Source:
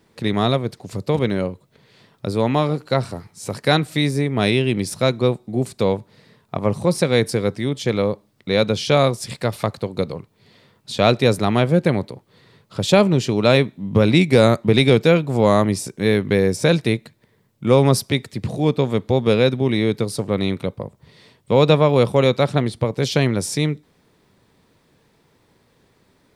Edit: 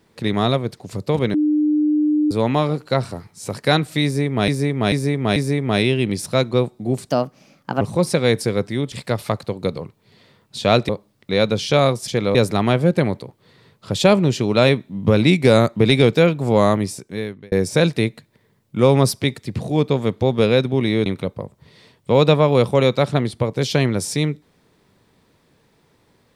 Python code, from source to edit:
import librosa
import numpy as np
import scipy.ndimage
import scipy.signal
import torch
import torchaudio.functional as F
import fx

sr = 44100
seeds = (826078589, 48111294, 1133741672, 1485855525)

y = fx.edit(x, sr, fx.bleep(start_s=1.34, length_s=0.97, hz=301.0, db=-14.0),
    fx.repeat(start_s=4.04, length_s=0.44, count=4),
    fx.speed_span(start_s=5.77, length_s=0.92, speed=1.28),
    fx.swap(start_s=7.8, length_s=0.27, other_s=9.26, other_length_s=1.97),
    fx.fade_out_span(start_s=15.53, length_s=0.87),
    fx.cut(start_s=19.94, length_s=0.53), tone=tone)